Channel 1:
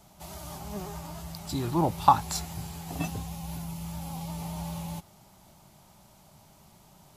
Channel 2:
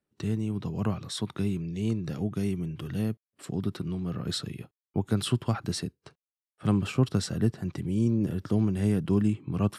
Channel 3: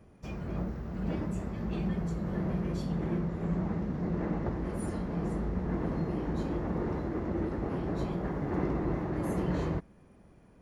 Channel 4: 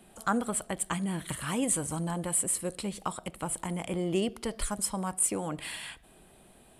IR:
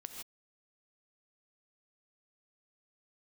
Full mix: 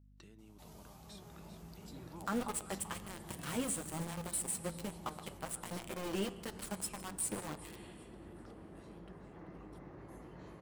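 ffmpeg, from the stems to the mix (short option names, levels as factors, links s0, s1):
-filter_complex "[0:a]acompressor=threshold=0.00891:ratio=2,volume=0.447,asplit=2[s0][s1];[s1]volume=0.668[s2];[1:a]acompressor=threshold=0.0316:ratio=6,volume=0.355,asplit=3[s3][s4][s5];[s4]volume=0.15[s6];[2:a]adelay=850,volume=0.251,asplit=3[s7][s8][s9];[s8]volume=0.473[s10];[s9]volume=0.299[s11];[3:a]highpass=59,flanger=delay=7:depth=3.4:regen=-4:speed=2:shape=triangular,adelay=2000,volume=0.944,asplit=3[s12][s13][s14];[s13]volume=0.376[s15];[s14]volume=0.0668[s16];[s5]apad=whole_len=316155[s17];[s0][s17]sidechaincompress=threshold=0.00224:ratio=8:attack=16:release=364[s18];[s3][s7]amix=inputs=2:normalize=0,highpass=f=620:p=1,acompressor=threshold=0.00316:ratio=6,volume=1[s19];[s18][s12]amix=inputs=2:normalize=0,aeval=exprs='val(0)*gte(abs(val(0)),0.0211)':c=same,alimiter=limit=0.0708:level=0:latency=1:release=157,volume=1[s20];[4:a]atrim=start_sample=2205[s21];[s10][s15]amix=inputs=2:normalize=0[s22];[s22][s21]afir=irnorm=-1:irlink=0[s23];[s2][s6][s11][s16]amix=inputs=4:normalize=0,aecho=0:1:386|772|1158|1544|1930:1|0.37|0.137|0.0507|0.0187[s24];[s19][s20][s23][s24]amix=inputs=4:normalize=0,flanger=delay=5.8:depth=4.8:regen=86:speed=0.22:shape=sinusoidal,aeval=exprs='val(0)+0.000891*(sin(2*PI*50*n/s)+sin(2*PI*2*50*n/s)/2+sin(2*PI*3*50*n/s)/3+sin(2*PI*4*50*n/s)/4+sin(2*PI*5*50*n/s)/5)':c=same"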